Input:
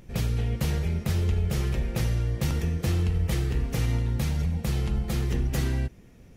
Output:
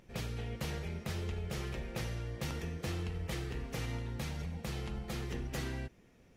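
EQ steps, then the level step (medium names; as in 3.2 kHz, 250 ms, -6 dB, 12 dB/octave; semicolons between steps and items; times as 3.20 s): bass shelf 230 Hz -10.5 dB; treble shelf 7.6 kHz -8 dB; -5.0 dB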